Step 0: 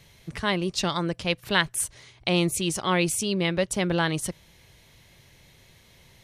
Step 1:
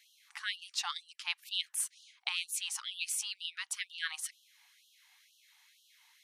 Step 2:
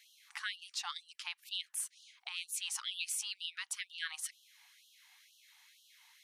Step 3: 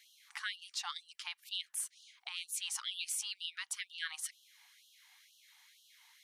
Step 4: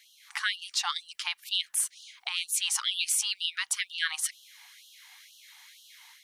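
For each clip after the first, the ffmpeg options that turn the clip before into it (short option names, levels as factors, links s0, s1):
-af "afftfilt=real='re*gte(b*sr/1024,700*pow(2800/700,0.5+0.5*sin(2*PI*2.1*pts/sr)))':imag='im*gte(b*sr/1024,700*pow(2800/700,0.5+0.5*sin(2*PI*2.1*pts/sr)))':win_size=1024:overlap=0.75,volume=0.473"
-af "alimiter=level_in=1.5:limit=0.0631:level=0:latency=1:release=398,volume=0.668,volume=1.19"
-af "bandreject=f=2600:w=27"
-af "dynaudnorm=f=170:g=3:m=2,volume=1.68"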